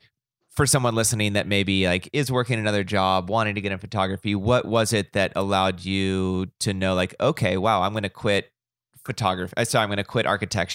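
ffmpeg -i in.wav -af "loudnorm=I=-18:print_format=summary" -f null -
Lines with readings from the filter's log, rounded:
Input Integrated:    -23.2 LUFS
Input True Peak:      -5.5 dBTP
Input LRA:             2.5 LU
Input Threshold:     -33.5 LUFS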